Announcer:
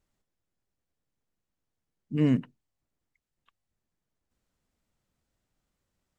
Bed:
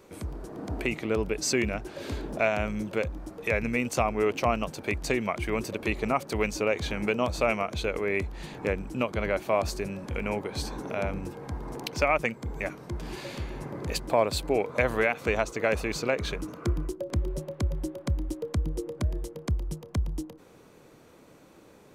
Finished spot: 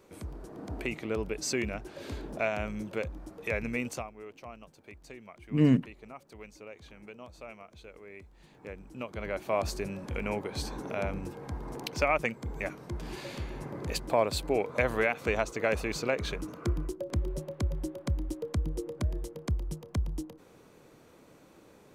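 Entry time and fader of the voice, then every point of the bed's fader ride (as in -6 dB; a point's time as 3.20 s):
3.40 s, +1.0 dB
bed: 3.91 s -5 dB
4.11 s -20.5 dB
8.27 s -20.5 dB
9.65 s -2.5 dB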